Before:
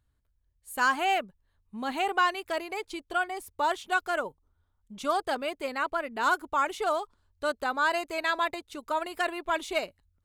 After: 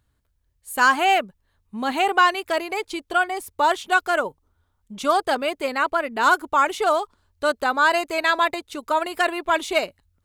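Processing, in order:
low-shelf EQ 64 Hz −7.5 dB
level +8 dB

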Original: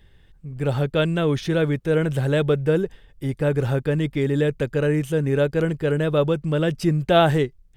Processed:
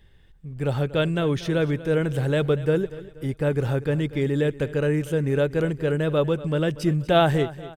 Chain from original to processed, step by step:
repeating echo 239 ms, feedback 44%, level −17 dB
level −2 dB

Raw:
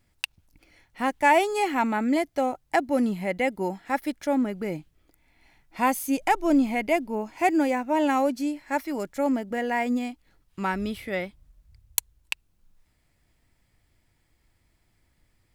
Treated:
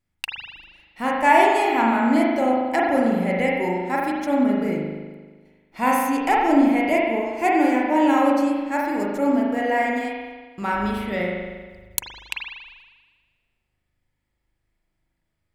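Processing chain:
noise gate −56 dBFS, range −13 dB
spring reverb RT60 1.4 s, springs 39 ms, chirp 60 ms, DRR −3.5 dB

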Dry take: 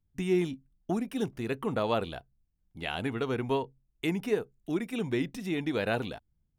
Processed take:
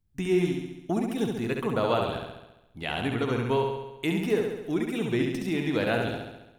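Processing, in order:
flutter between parallel walls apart 11.7 metres, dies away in 0.97 s
level +2 dB

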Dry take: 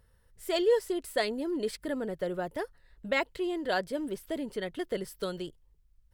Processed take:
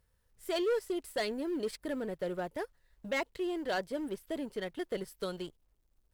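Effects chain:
mu-law and A-law mismatch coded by A
soft clipping −26 dBFS, distortion −11 dB

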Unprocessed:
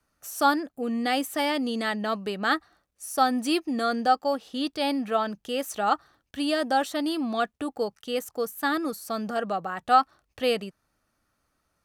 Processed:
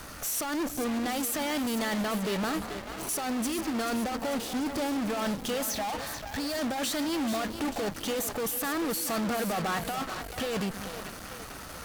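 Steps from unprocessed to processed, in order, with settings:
0:02.39–0:03.09: running median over 25 samples
0:04.17–0:05.10: parametric band 2,800 Hz −11 dB 3 octaves
compressor whose output falls as the input rises −31 dBFS, ratio −1
0:05.69–0:06.59: phaser with its sweep stopped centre 2,000 Hz, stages 8
power curve on the samples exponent 0.35
on a send: echo with a time of its own for lows and highs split 320 Hz, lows 189 ms, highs 437 ms, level −11 dB
on the sum: harmonic generator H 6 −13 dB, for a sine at −19 dBFS
level −7.5 dB

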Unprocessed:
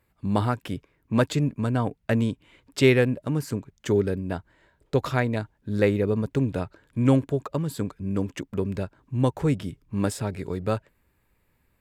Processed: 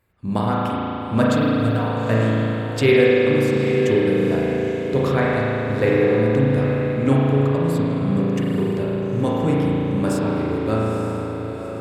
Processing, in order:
0:01.37–0:01.96: log-companded quantiser 8 bits
reverb reduction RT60 0.52 s
on a send: feedback delay with all-pass diffusion 883 ms, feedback 47%, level −9 dB
on the sum: spring reverb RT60 3.3 s, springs 36 ms, chirp 20 ms, DRR −6 dB

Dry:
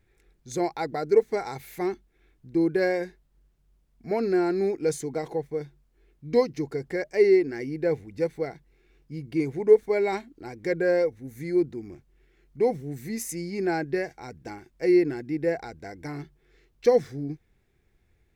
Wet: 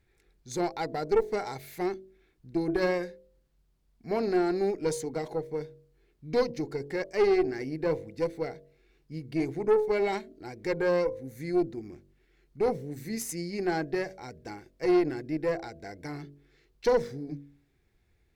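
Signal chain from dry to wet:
parametric band 4,400 Hz +4 dB 0.49 octaves
hum removal 47.42 Hz, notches 14
tube saturation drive 17 dB, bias 0.5

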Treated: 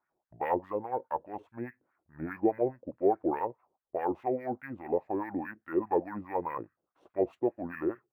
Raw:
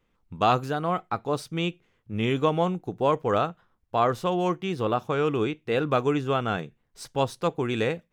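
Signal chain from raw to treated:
parametric band 5,900 Hz −12.5 dB 1.8 octaves
in parallel at −9.5 dB: soft clipping −19 dBFS, distortion −14 dB
on the sum: auto-filter band-pass sine 4.8 Hz 570–2,500 Hz
pitch shifter −6 semitones
linearly interpolated sample-rate reduction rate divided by 3×

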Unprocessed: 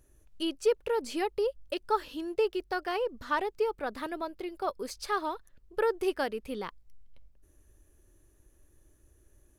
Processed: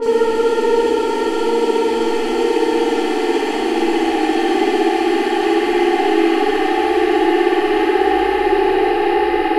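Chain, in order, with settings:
extreme stretch with random phases 33×, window 0.50 s, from 0:01.01
spring reverb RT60 1.3 s, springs 60 ms, chirp 70 ms, DRR −9 dB
low-pass that shuts in the quiet parts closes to 670 Hz, open at −24.5 dBFS
level +6.5 dB

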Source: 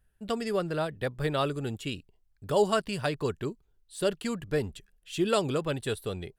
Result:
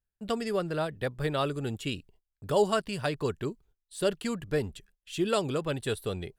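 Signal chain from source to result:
in parallel at −1.5 dB: speech leveller 0.5 s
on the sum: noise gate −52 dBFS, range −20 dB
level −6 dB

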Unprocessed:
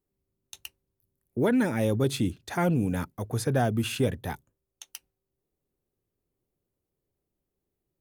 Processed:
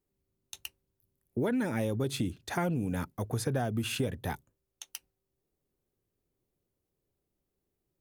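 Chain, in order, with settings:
downward compressor, threshold −27 dBFS, peak gain reduction 7.5 dB

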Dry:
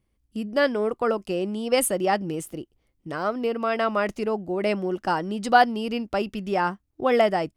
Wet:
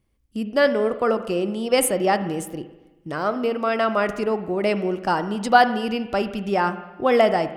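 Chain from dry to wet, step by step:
spring reverb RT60 1.1 s, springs 40/54 ms, chirp 60 ms, DRR 10.5 dB
level +2.5 dB

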